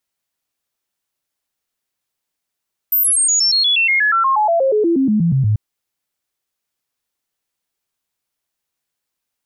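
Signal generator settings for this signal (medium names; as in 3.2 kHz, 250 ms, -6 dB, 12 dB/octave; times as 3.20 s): stepped sine 13.6 kHz down, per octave 3, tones 22, 0.12 s, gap 0.00 s -11.5 dBFS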